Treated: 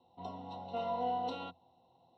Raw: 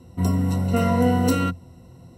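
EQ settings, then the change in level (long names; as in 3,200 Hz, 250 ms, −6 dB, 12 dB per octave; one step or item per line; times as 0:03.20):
pair of resonant band-passes 1,700 Hz, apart 2.1 octaves
high-frequency loss of the air 220 metres
dynamic equaliser 1,700 Hz, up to +5 dB, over −58 dBFS, Q 2.1
+1.0 dB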